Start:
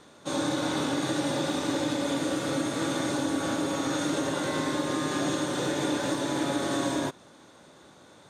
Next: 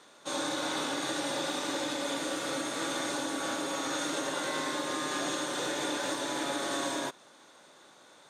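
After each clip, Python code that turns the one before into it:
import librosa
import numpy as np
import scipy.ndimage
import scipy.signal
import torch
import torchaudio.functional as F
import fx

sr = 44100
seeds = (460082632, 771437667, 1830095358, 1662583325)

y = fx.highpass(x, sr, hz=710.0, slope=6)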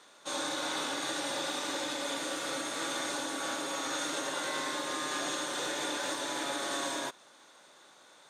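y = fx.low_shelf(x, sr, hz=480.0, db=-6.5)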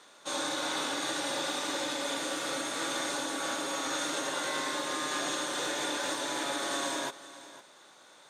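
y = x + 10.0 ** (-16.5 / 20.0) * np.pad(x, (int(506 * sr / 1000.0), 0))[:len(x)]
y = y * librosa.db_to_amplitude(1.5)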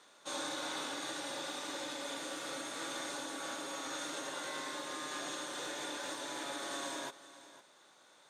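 y = fx.rider(x, sr, range_db=10, speed_s=2.0)
y = y * librosa.db_to_amplitude(-8.0)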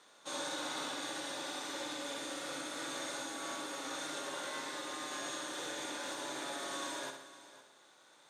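y = fx.echo_feedback(x, sr, ms=63, feedback_pct=55, wet_db=-7)
y = y * librosa.db_to_amplitude(-1.0)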